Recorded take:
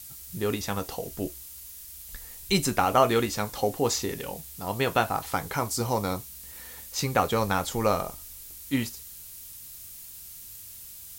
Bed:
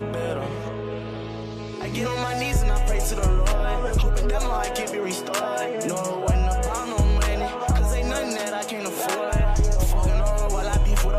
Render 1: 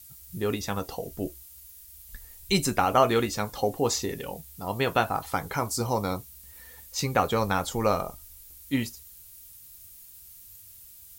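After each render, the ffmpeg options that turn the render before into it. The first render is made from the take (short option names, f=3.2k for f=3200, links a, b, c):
-af "afftdn=nr=8:nf=-44"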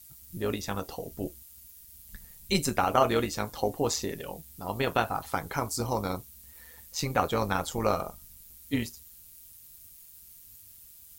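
-af "tremolo=f=160:d=0.571"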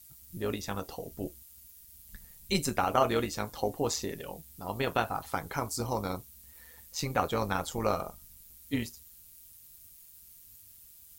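-af "volume=-2.5dB"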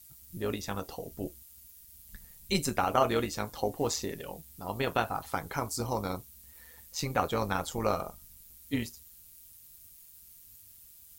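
-filter_complex "[0:a]asettb=1/sr,asplit=3[a][b][c];[a]atrim=end=3.724[d];[b]atrim=start=3.72:end=4.61,asetpts=PTS-STARTPTS,afade=t=in:d=0.004:c=qsin,afade=t=out:st=0.886:d=0.004:c=qsin,acrusher=bits=7:mode=log:mix=0:aa=0.000001[e];[c]atrim=start=4.606[f];[d][e]acrossfade=d=0.004:c1=hsin:c2=qsin[g];[g][f]acrossfade=d=0.004:c1=qsin:c2=hsin"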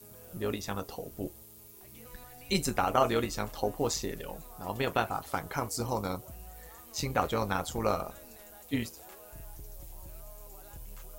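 -filter_complex "[1:a]volume=-27.5dB[a];[0:a][a]amix=inputs=2:normalize=0"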